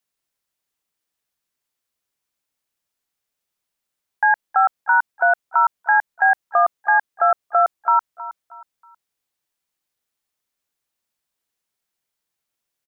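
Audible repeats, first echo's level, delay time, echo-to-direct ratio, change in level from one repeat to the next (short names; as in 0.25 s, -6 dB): 3, -15.5 dB, 0.318 s, -15.0 dB, -9.5 dB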